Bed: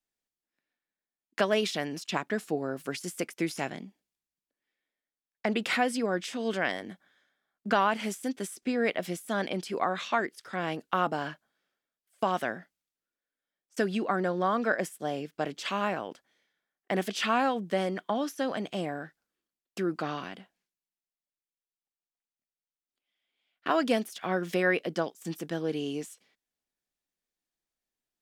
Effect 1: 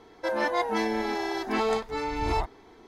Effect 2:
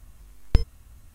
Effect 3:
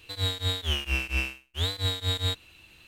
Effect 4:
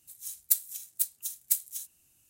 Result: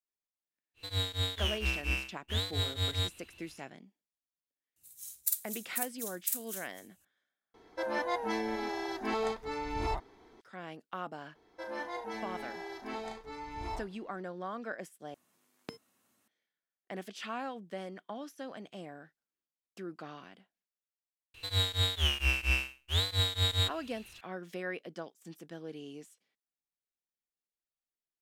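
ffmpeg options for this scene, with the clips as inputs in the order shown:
-filter_complex "[3:a]asplit=2[s0][s1];[1:a]asplit=2[s2][s3];[0:a]volume=0.237[s4];[4:a]aecho=1:1:49.56|259.5:0.891|0.282[s5];[s3]aecho=1:1:35|73:0.447|0.211[s6];[2:a]highpass=f=210:w=0.5412,highpass=f=210:w=1.3066[s7];[s1]equalizer=f=260:t=o:w=1.8:g=-6[s8];[s4]asplit=3[s9][s10][s11];[s9]atrim=end=7.544[s12];[s2]atrim=end=2.87,asetpts=PTS-STARTPTS,volume=0.473[s13];[s10]atrim=start=10.406:end=15.144[s14];[s7]atrim=end=1.14,asetpts=PTS-STARTPTS,volume=0.282[s15];[s11]atrim=start=16.276[s16];[s0]atrim=end=2.87,asetpts=PTS-STARTPTS,volume=0.596,afade=t=in:d=0.1,afade=t=out:st=2.77:d=0.1,adelay=740[s17];[s5]atrim=end=2.29,asetpts=PTS-STARTPTS,volume=0.398,afade=t=in:d=0.004:c=hsin,afade=t=out:st=2.286:d=0.004:c=hsin,adelay=4760[s18];[s6]atrim=end=2.87,asetpts=PTS-STARTPTS,volume=0.211,afade=t=in:d=0.004:c=hsin,afade=t=out:st=2.866:d=0.004:c=hsin,adelay=11350[s19];[s8]atrim=end=2.87,asetpts=PTS-STARTPTS,volume=0.944,afade=t=in:d=0.004:c=hsin,afade=t=out:st=2.866:d=0.004:c=hsin,adelay=21340[s20];[s12][s13]acrossfade=d=0.004:c1=hsin:c2=hsin[s21];[s21][s14]acrossfade=d=0.004:c1=hsin:c2=hsin[s22];[s22][s15]acrossfade=d=0.004:c1=hsin:c2=hsin[s23];[s23][s16]acrossfade=d=0.004:c1=hsin:c2=hsin[s24];[s24][s17][s18][s19][s20]amix=inputs=5:normalize=0"

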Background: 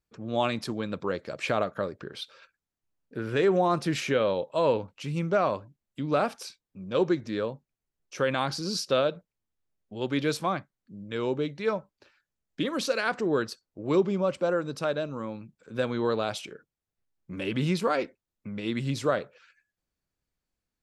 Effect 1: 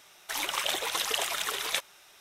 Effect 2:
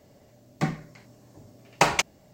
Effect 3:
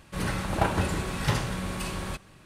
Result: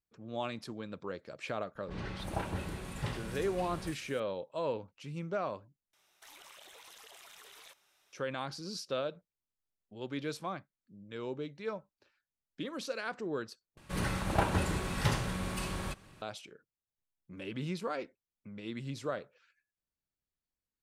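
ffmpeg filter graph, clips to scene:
-filter_complex "[3:a]asplit=2[s0][s1];[0:a]volume=0.299[s2];[s0]acrossover=split=1300|5500[s3][s4][s5];[s4]adelay=30[s6];[s5]adelay=320[s7];[s3][s6][s7]amix=inputs=3:normalize=0[s8];[1:a]acompressor=threshold=0.0141:ratio=10:attack=4.8:release=22:knee=1:detection=rms[s9];[s2]asplit=3[s10][s11][s12];[s10]atrim=end=5.934[s13];[s9]atrim=end=2.2,asetpts=PTS-STARTPTS,volume=0.168[s14];[s11]atrim=start=8.126:end=13.774[s15];[s1]atrim=end=2.45,asetpts=PTS-STARTPTS,volume=0.631[s16];[s12]atrim=start=16.216[s17];[s8]atrim=end=2.45,asetpts=PTS-STARTPTS,volume=0.299,afade=t=in:d=0.004:c=hsin,afade=t=out:st=2.446:d=0.004:c=hsin,adelay=1750[s18];[s13][s14]acrossfade=d=0.004:c1=hsin:c2=hsin[s19];[s19][s15]acrossfade=d=0.004:c1=hsin:c2=hsin[s20];[s20][s16]acrossfade=d=0.004:c1=hsin:c2=hsin[s21];[s21][s17]acrossfade=d=0.004:c1=hsin:c2=hsin[s22];[s22][s18]amix=inputs=2:normalize=0"

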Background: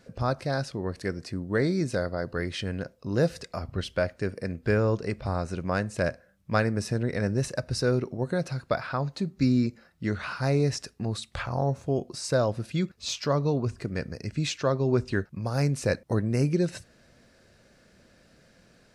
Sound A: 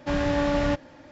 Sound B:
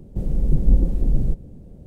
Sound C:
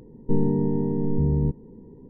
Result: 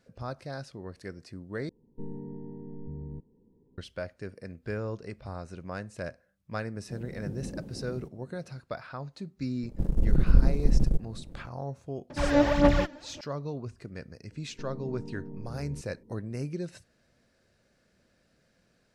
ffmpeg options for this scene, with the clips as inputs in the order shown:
-filter_complex "[3:a]asplit=2[s0][s1];[2:a]asplit=2[s2][s3];[0:a]volume=0.316[s4];[s2]highpass=150[s5];[s3]aeval=exprs='if(lt(val(0),0),0.251*val(0),val(0))':c=same[s6];[1:a]aphaser=in_gain=1:out_gain=1:delay=3.5:decay=0.68:speed=1.8:type=sinusoidal[s7];[s1]acompressor=threshold=0.0631:ratio=6:attack=3.2:release=140:knee=1:detection=peak[s8];[s4]asplit=2[s9][s10];[s9]atrim=end=1.694[s11];[s0]atrim=end=2.09,asetpts=PTS-STARTPTS,volume=0.126[s12];[s10]atrim=start=3.776[s13];[s5]atrim=end=1.86,asetpts=PTS-STARTPTS,volume=0.299,afade=t=in:d=0.004:c=hsin,afade=t=out:st=1.856:d=0.004:c=hsin,adelay=297234S[s14];[s6]atrim=end=1.86,asetpts=PTS-STARTPTS,volume=0.944,afade=t=in:d=0.004:c=hsin,afade=t=out:st=1.856:d=0.004:c=hsin,adelay=9630[s15];[s7]atrim=end=1.11,asetpts=PTS-STARTPTS,volume=0.668,afade=t=in:d=0.004:c=hsin,afade=t=out:st=1.106:d=0.004:c=hsin,adelay=12100[s16];[s8]atrim=end=2.09,asetpts=PTS-STARTPTS,volume=0.237,afade=t=in:d=0.004:c=hsin,afade=t=out:st=2.086:d=0.004:c=hsin,adelay=14300[s17];[s11][s12]acrossfade=d=0.004:c1=hsin:c2=hsin[s18];[s18][s13]acrossfade=d=0.004:c1=hsin:c2=hsin[s19];[s19][s14][s15][s16][s17]amix=inputs=5:normalize=0"

